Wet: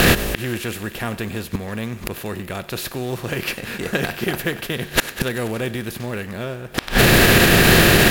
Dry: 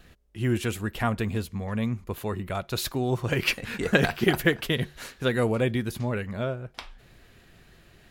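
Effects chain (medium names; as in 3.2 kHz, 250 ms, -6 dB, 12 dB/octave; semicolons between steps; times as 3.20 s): spectral levelling over time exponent 0.6; treble shelf 10 kHz +9 dB; in parallel at -9 dB: companded quantiser 4-bit; on the sum: inverted gate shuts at -19 dBFS, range -31 dB; on a send: thinning echo 95 ms, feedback 79%, high-pass 690 Hz, level -18.5 dB; on the sum: loudness maximiser +27 dB; trim -2 dB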